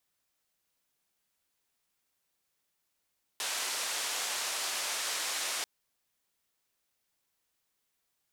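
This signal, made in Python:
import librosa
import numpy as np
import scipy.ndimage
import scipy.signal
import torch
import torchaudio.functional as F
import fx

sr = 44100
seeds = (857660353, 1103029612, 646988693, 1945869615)

y = fx.band_noise(sr, seeds[0], length_s=2.24, low_hz=550.0, high_hz=8400.0, level_db=-34.5)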